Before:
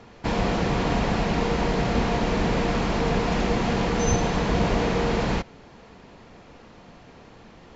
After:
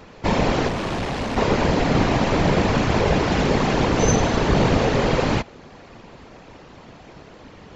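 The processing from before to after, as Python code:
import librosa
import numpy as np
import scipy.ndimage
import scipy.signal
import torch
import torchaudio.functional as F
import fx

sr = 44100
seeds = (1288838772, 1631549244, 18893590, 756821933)

y = fx.whisperise(x, sr, seeds[0])
y = fx.tube_stage(y, sr, drive_db=26.0, bias=0.65, at=(0.68, 1.37))
y = y * librosa.db_to_amplitude(4.5)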